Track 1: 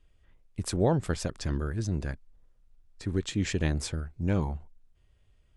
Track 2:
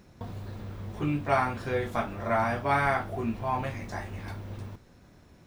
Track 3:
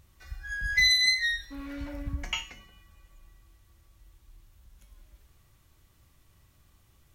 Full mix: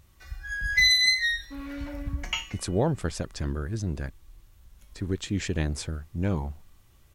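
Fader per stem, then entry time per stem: 0.0 dB, muted, +2.0 dB; 1.95 s, muted, 0.00 s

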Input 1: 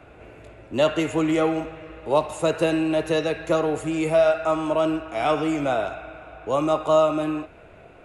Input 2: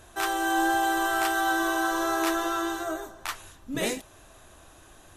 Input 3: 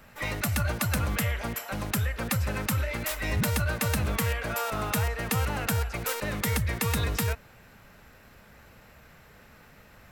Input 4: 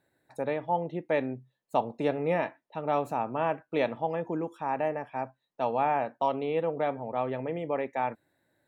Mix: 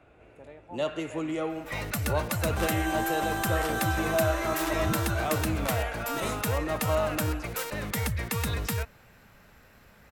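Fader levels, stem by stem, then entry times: −10.0, −6.0, −2.5, −18.0 decibels; 0.00, 2.40, 1.50, 0.00 seconds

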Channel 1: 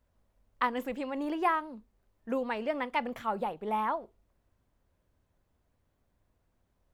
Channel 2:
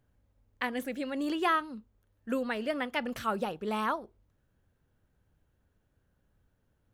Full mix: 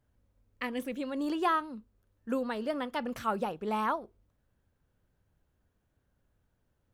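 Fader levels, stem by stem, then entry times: −8.0, −3.0 decibels; 0.00, 0.00 seconds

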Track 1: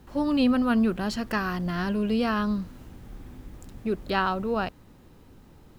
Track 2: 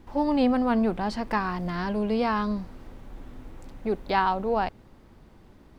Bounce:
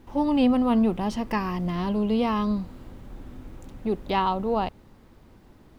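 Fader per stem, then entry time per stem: −6.0, −1.0 decibels; 0.00, 0.00 seconds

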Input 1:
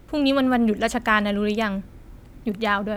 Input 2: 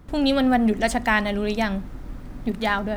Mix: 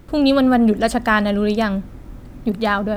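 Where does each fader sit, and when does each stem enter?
+2.5, −4.5 decibels; 0.00, 0.00 seconds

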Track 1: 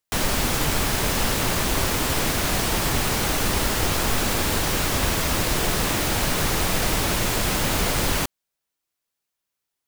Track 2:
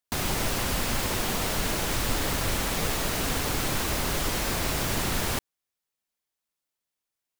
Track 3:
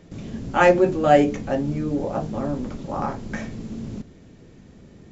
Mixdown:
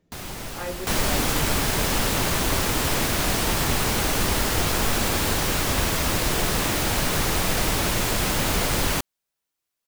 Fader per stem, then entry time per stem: −0.5, −7.0, −18.5 decibels; 0.75, 0.00, 0.00 seconds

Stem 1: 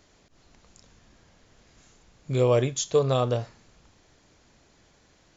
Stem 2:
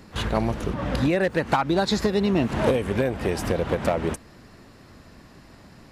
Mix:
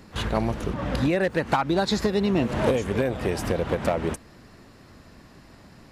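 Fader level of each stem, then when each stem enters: −16.0, −1.0 decibels; 0.00, 0.00 seconds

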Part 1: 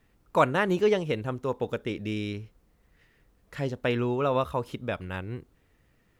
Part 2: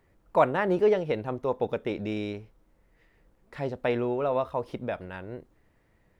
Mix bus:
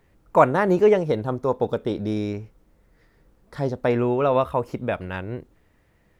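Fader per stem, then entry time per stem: −1.5, +2.5 decibels; 0.00, 0.00 seconds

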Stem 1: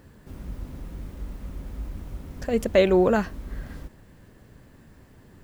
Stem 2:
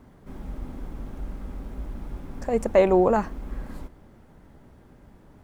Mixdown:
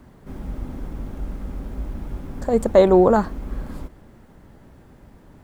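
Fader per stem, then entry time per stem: −5.5, +3.0 decibels; 0.00, 0.00 seconds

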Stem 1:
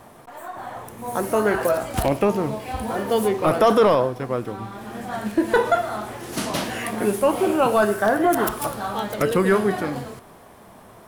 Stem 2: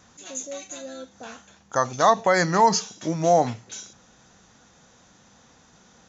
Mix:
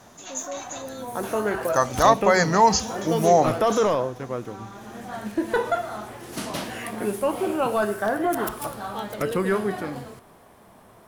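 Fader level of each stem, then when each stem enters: −5.0, +1.0 decibels; 0.00, 0.00 seconds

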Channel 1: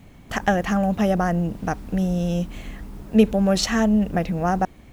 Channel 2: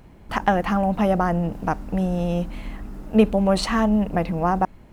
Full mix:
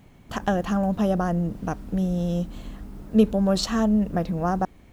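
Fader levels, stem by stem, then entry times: −5.5, −10.0 decibels; 0.00, 0.00 seconds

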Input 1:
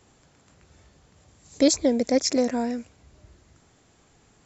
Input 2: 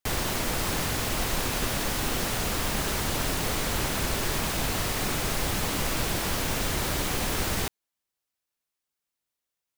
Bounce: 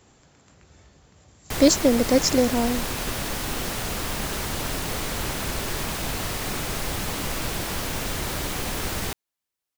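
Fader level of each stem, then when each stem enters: +2.5, −0.5 decibels; 0.00, 1.45 seconds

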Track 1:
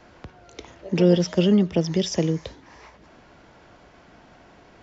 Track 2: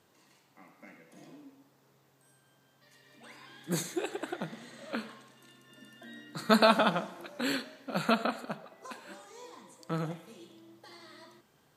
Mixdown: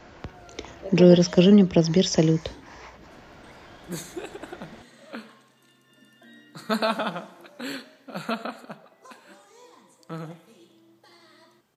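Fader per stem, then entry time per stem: +3.0, −2.0 decibels; 0.00, 0.20 seconds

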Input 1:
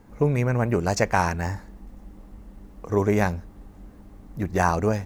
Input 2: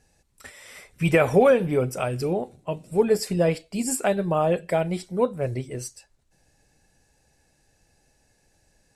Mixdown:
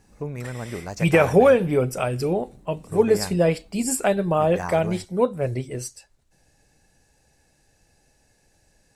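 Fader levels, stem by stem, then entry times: −10.0, +2.0 decibels; 0.00, 0.00 seconds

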